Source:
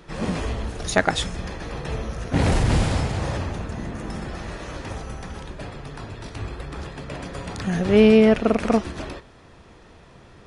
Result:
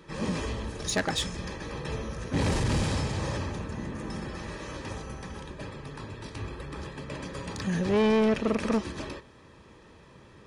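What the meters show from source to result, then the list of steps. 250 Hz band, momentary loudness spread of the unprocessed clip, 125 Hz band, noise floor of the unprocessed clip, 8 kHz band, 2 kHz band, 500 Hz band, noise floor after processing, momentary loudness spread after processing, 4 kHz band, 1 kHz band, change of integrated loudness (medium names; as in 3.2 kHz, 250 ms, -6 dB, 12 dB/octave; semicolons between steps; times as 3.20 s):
-7.5 dB, 19 LU, -6.0 dB, -49 dBFS, -2.5 dB, -6.5 dB, -8.0 dB, -53 dBFS, 15 LU, -4.0 dB, -6.0 dB, -8.0 dB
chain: dynamic bell 5.6 kHz, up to +4 dB, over -46 dBFS, Q 0.9; comb of notches 710 Hz; saturation -16.5 dBFS, distortion -9 dB; trim -3 dB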